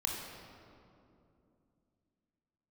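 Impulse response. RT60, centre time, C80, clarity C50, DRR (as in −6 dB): 2.7 s, 97 ms, 2.5 dB, 1.0 dB, −1.5 dB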